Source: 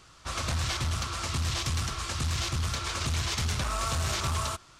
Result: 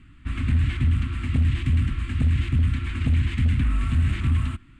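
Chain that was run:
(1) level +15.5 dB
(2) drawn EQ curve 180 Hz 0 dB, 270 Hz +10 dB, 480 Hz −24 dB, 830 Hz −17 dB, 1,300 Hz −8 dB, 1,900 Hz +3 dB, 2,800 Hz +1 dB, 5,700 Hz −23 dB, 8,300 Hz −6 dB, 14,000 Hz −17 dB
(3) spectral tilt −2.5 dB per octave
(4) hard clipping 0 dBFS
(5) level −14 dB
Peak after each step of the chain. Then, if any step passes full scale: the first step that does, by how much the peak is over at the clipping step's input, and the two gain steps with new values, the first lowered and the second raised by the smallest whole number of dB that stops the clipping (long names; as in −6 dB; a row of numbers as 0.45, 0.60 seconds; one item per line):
−4.5, −3.5, +3.0, 0.0, −14.0 dBFS
step 3, 3.0 dB
step 1 +12.5 dB, step 5 −11 dB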